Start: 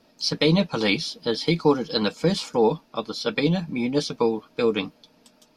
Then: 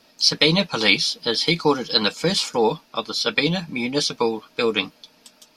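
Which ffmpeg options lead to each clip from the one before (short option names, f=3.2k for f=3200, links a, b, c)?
-af "tiltshelf=f=970:g=-5.5,volume=3.5dB"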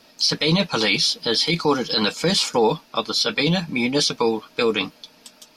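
-af "alimiter=limit=-13dB:level=0:latency=1:release=12,volume=3.5dB"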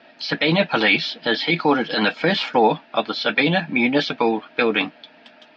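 -af "highpass=180,equalizer=f=180:t=q:w=4:g=-4,equalizer=f=460:t=q:w=4:g=-6,equalizer=f=690:t=q:w=4:g=6,equalizer=f=1.1k:t=q:w=4:g=-7,equalizer=f=1.7k:t=q:w=4:g=6,lowpass=f=3.1k:w=0.5412,lowpass=f=3.1k:w=1.3066,volume=4.5dB"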